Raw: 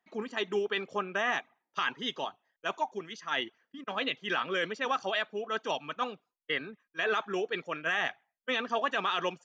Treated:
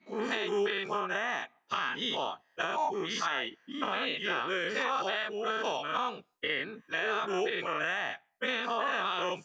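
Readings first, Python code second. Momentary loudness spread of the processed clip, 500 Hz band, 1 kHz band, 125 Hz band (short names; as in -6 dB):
5 LU, +0.5 dB, +1.0 dB, 0.0 dB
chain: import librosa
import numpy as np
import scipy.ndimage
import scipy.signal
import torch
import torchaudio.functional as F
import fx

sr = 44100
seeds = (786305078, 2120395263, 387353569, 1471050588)

y = fx.spec_dilate(x, sr, span_ms=120)
y = fx.recorder_agc(y, sr, target_db=-14.0, rise_db_per_s=28.0, max_gain_db=30)
y = y * 10.0 ** (-8.0 / 20.0)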